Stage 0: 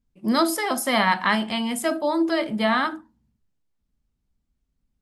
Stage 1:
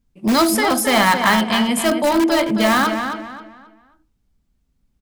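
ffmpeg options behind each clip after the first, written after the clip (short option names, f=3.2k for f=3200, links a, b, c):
-filter_complex "[0:a]asplit=2[a][b];[b]aeval=exprs='(mod(7.5*val(0)+1,2)-1)/7.5':c=same,volume=-8.5dB[c];[a][c]amix=inputs=2:normalize=0,asplit=2[d][e];[e]adelay=267,lowpass=f=4k:p=1,volume=-7dB,asplit=2[f][g];[g]adelay=267,lowpass=f=4k:p=1,volume=0.32,asplit=2[h][i];[i]adelay=267,lowpass=f=4k:p=1,volume=0.32,asplit=2[j][k];[k]adelay=267,lowpass=f=4k:p=1,volume=0.32[l];[d][f][h][j][l]amix=inputs=5:normalize=0,volume=4.5dB"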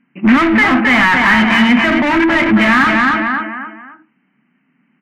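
-filter_complex "[0:a]afftfilt=real='re*between(b*sr/4096,130,3100)':imag='im*between(b*sr/4096,130,3100)':win_size=4096:overlap=0.75,asplit=2[a][b];[b]highpass=f=720:p=1,volume=30dB,asoftclip=type=tanh:threshold=-2.5dB[c];[a][c]amix=inputs=2:normalize=0,lowpass=f=1.2k:p=1,volume=-6dB,equalizer=f=250:t=o:w=1:g=9,equalizer=f=500:t=o:w=1:g=-11,equalizer=f=2k:t=o:w=1:g=11,volume=-3.5dB"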